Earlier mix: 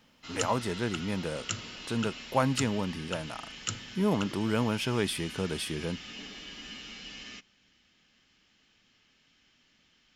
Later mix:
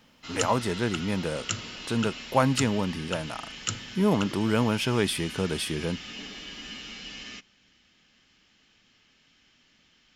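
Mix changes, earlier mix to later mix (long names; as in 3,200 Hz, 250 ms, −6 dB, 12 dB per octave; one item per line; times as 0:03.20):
speech +4.0 dB
background +3.5 dB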